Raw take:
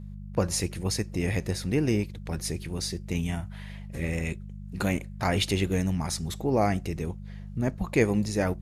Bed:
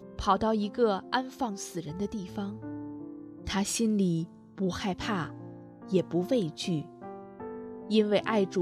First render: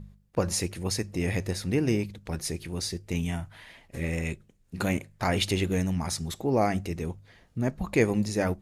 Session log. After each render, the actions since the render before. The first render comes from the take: de-hum 50 Hz, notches 4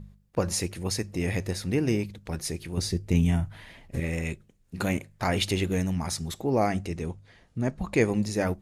2.77–4.00 s: bass shelf 370 Hz +9 dB; 6.72–8.25 s: low-pass 11 kHz 24 dB/octave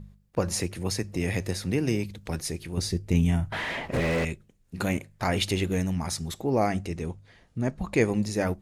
0.55–2.41 s: three bands compressed up and down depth 40%; 3.52–4.25 s: overdrive pedal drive 35 dB, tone 1.2 kHz, clips at -17 dBFS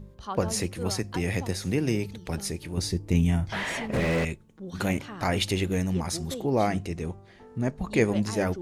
add bed -10 dB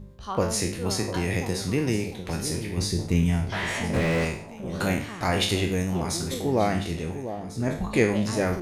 spectral sustain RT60 0.50 s; echo whose repeats swap between lows and highs 699 ms, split 970 Hz, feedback 52%, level -10 dB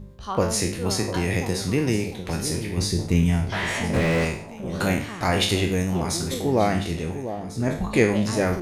trim +2.5 dB

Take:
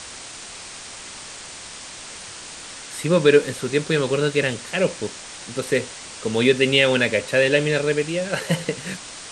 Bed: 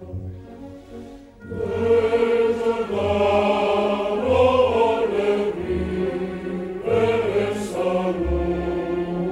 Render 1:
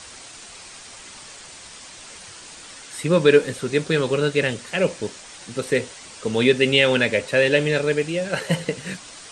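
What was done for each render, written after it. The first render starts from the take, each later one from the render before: noise reduction 6 dB, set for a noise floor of -38 dBFS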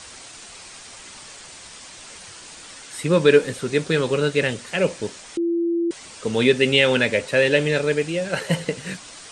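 5.37–5.91 s: bleep 339 Hz -18.5 dBFS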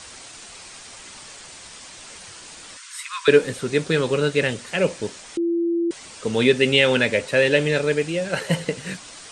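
2.77–3.28 s: Chebyshev high-pass 970 Hz, order 10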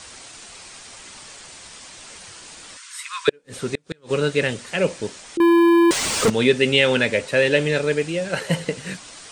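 3.29–4.27 s: inverted gate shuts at -10 dBFS, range -37 dB; 5.40–6.30 s: waveshaping leveller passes 5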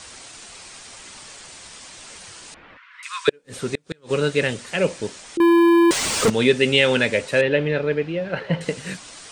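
2.54–3.03 s: low-pass 2.4 kHz 24 dB/octave; 7.41–8.61 s: distance through air 320 m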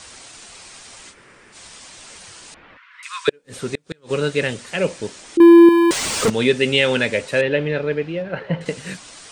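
1.12–1.54 s: room tone, crossfade 0.06 s; 5.18–5.69 s: peaking EQ 320 Hz +8 dB; 8.22–8.66 s: treble shelf 4.2 kHz -12 dB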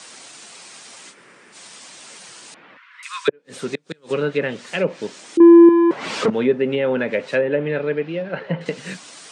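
low-pass that closes with the level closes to 1.1 kHz, closed at -13.5 dBFS; high-pass 150 Hz 24 dB/octave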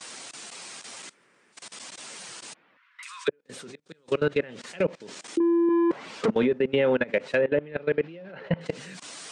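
level held to a coarse grid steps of 21 dB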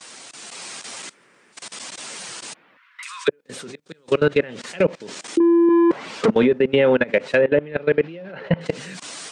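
level rider gain up to 7 dB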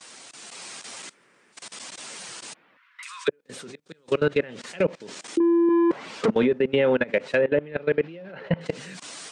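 trim -4.5 dB

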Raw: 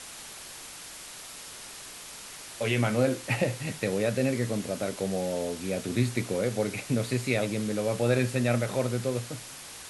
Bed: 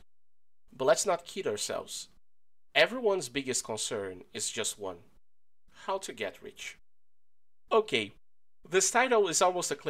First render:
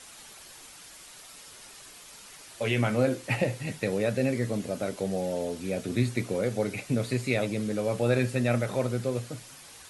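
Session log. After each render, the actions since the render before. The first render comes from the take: noise reduction 7 dB, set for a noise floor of -44 dBFS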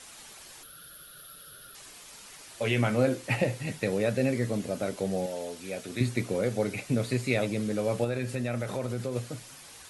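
0.63–1.75 s: FFT filter 100 Hz 0 dB, 140 Hz +7 dB, 230 Hz -5 dB, 590 Hz 0 dB, 940 Hz -21 dB, 1.4 kHz +9 dB, 2.1 kHz -15 dB, 3.4 kHz +1 dB, 7.6 kHz -16 dB, 12 kHz +11 dB; 5.26–6.01 s: bass shelf 430 Hz -11 dB; 8.04–9.16 s: compression 3:1, threshold -28 dBFS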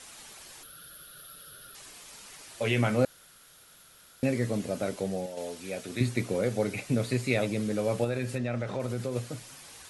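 3.05–4.23 s: room tone; 4.92–5.37 s: fade out, to -6 dB; 8.38–8.80 s: distance through air 96 m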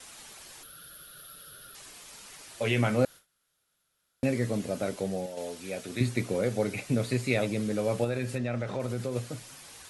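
gate with hold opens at -42 dBFS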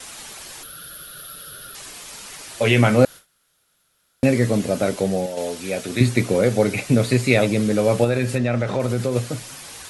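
trim +10.5 dB

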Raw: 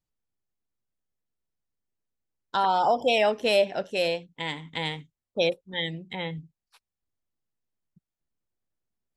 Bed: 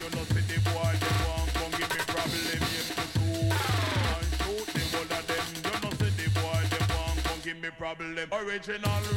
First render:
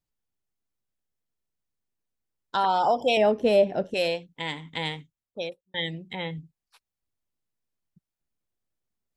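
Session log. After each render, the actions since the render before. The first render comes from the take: 3.17–3.94 s: tilt shelf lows +8.5 dB, about 800 Hz; 4.89–5.74 s: fade out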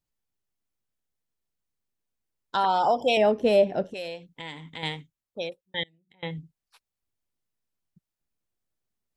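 3.90–4.83 s: compression 2:1, threshold -39 dBFS; 5.83–6.23 s: inverted gate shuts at -36 dBFS, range -29 dB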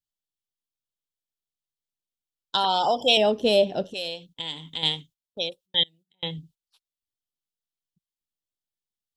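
gate -53 dBFS, range -13 dB; resonant high shelf 2.6 kHz +6.5 dB, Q 3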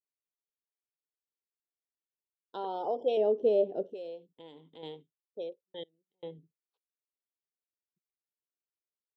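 band-pass filter 420 Hz, Q 3.2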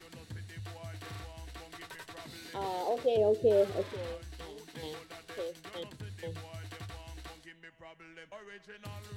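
add bed -17 dB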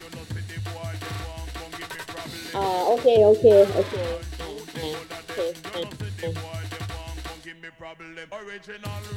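trim +11.5 dB

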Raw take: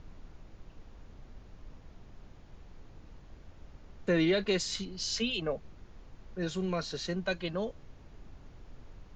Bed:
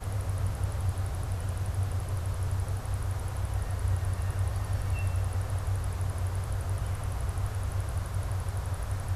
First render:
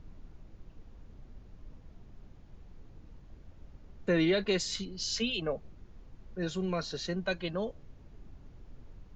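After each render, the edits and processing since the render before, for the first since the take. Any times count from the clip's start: noise reduction 6 dB, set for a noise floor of -54 dBFS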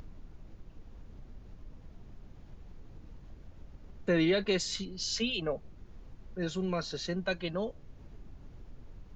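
upward compressor, threshold -42 dBFS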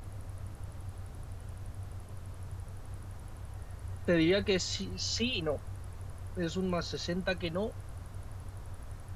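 add bed -13 dB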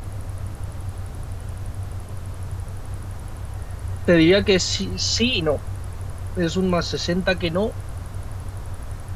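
trim +12 dB

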